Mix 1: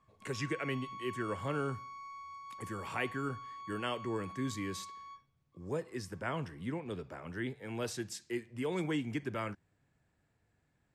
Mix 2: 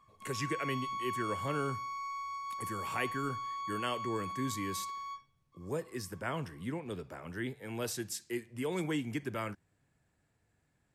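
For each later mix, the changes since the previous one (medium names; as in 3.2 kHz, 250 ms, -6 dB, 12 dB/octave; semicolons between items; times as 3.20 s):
background +7.5 dB; master: remove distance through air 51 m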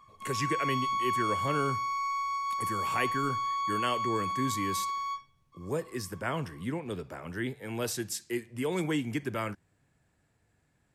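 speech +4.0 dB; background +8.0 dB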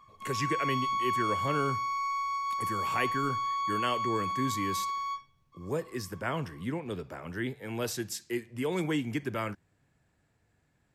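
master: add peaking EQ 9.3 kHz -5 dB 0.55 oct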